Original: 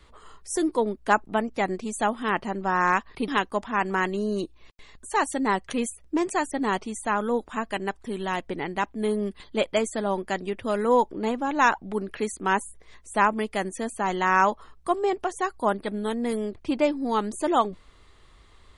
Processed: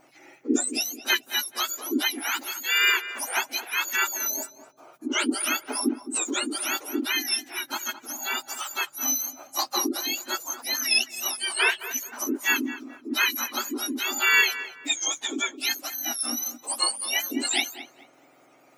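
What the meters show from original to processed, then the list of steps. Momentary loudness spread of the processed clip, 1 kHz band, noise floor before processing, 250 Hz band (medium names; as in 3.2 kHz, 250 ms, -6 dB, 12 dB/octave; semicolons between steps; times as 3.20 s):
9 LU, -9.0 dB, -55 dBFS, -3.5 dB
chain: spectrum inverted on a logarithmic axis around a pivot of 1.6 kHz; filtered feedback delay 216 ms, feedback 33%, low-pass 2 kHz, level -11.5 dB; trim +3 dB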